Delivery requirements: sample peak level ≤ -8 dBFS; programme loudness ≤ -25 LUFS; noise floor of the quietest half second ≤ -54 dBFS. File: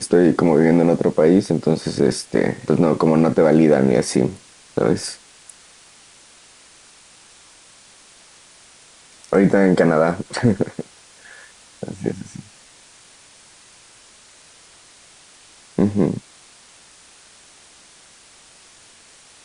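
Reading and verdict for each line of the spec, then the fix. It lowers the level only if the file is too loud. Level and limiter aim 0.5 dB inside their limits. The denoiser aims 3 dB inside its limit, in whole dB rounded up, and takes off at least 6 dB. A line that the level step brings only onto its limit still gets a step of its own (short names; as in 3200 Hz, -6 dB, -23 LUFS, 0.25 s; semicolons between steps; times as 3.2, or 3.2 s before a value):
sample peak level -3.5 dBFS: fail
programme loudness -17.5 LUFS: fail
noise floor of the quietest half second -48 dBFS: fail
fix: gain -8 dB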